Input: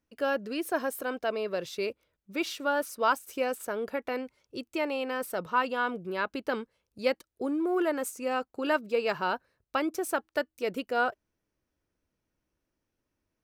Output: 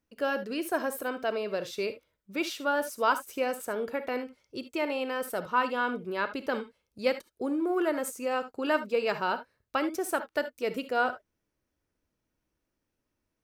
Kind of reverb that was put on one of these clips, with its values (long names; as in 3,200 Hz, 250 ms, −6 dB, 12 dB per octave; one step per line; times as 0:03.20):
reverb whose tail is shaped and stops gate 90 ms rising, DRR 11 dB